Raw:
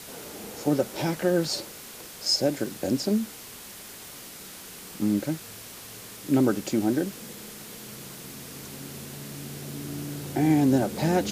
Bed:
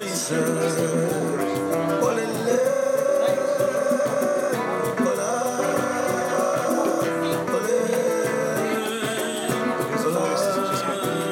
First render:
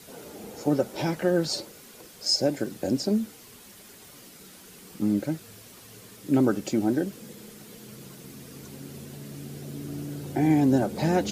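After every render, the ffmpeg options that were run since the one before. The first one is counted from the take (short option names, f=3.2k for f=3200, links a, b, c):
-af "afftdn=nr=8:nf=-43"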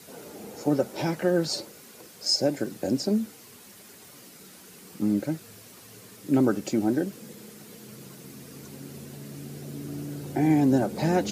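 -af "highpass=86,equalizer=f=3.3k:w=3.8:g=-2.5"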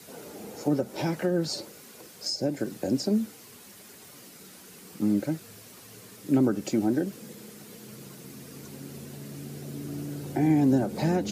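-filter_complex "[0:a]acrossover=split=360[a][b];[b]acompressor=threshold=-29dB:ratio=6[c];[a][c]amix=inputs=2:normalize=0"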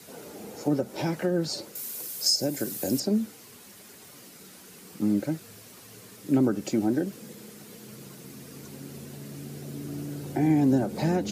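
-filter_complex "[0:a]asettb=1/sr,asplit=3[a][b][c];[a]atrim=end=1.754[d];[b]atrim=start=1.75:end=3,asetpts=PTS-STARTPTS,afade=t=in:d=0.004:c=qsin,afade=t=out:st=1.246:d=0.004:c=qsin,aemphasis=mode=production:type=75fm[e];[c]atrim=start=2.996[f];[d][e]acrossfade=d=0.004:c1=hsin:c2=qsin[g];[g][f]acrossfade=d=0.004:c1=qsin:c2=hsin"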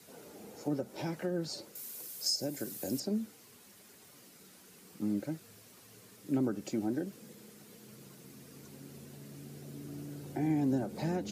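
-af "volume=-8.5dB"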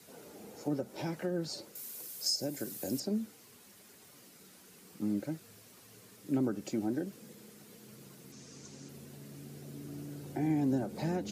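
-filter_complex "[0:a]asettb=1/sr,asplit=3[a][b][c];[a]atrim=end=8.324[d];[b]atrim=start=8.32:end=8.89,asetpts=PTS-STARTPTS,afade=t=in:d=0.004:c=qsin,afade=t=out:st=0.566:d=0.004:c=qsin,lowpass=f=6.4k:t=q:w=3[e];[c]atrim=start=8.886[f];[d][e]acrossfade=d=0.004:c1=hsin:c2=qsin[g];[g][f]acrossfade=d=0.004:c1=qsin:c2=hsin"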